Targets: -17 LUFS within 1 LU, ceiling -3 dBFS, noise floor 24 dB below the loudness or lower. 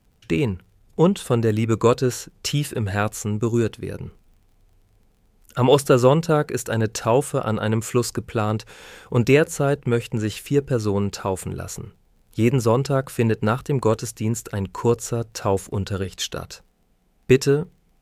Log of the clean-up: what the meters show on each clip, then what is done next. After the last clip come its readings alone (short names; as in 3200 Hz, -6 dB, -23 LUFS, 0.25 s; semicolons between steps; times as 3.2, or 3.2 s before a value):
ticks 26/s; loudness -22.0 LUFS; peak -4.0 dBFS; loudness target -17.0 LUFS
-> de-click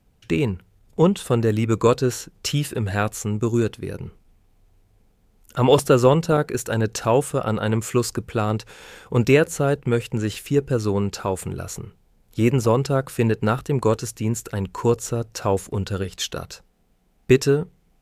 ticks 0.056/s; loudness -22.0 LUFS; peak -4.0 dBFS; loudness target -17.0 LUFS
-> gain +5 dB; limiter -3 dBFS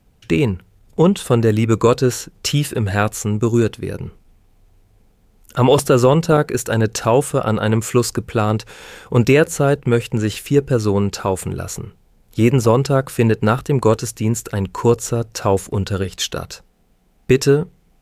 loudness -17.5 LUFS; peak -3.0 dBFS; noise floor -56 dBFS